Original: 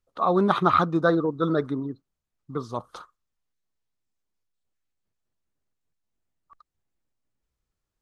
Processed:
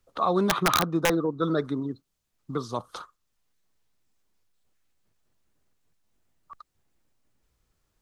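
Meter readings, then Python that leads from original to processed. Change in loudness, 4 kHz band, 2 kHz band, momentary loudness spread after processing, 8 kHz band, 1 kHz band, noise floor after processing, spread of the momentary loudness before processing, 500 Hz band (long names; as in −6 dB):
−2.5 dB, +7.5 dB, +0.5 dB, 15 LU, can't be measured, −3.5 dB, −77 dBFS, 15 LU, −2.5 dB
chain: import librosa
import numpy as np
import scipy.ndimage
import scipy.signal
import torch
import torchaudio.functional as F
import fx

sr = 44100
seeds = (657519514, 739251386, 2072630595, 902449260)

y = (np.mod(10.0 ** (10.0 / 20.0) * x + 1.0, 2.0) - 1.0) / 10.0 ** (10.0 / 20.0)
y = fx.band_squash(y, sr, depth_pct=40)
y = F.gain(torch.from_numpy(y), -2.0).numpy()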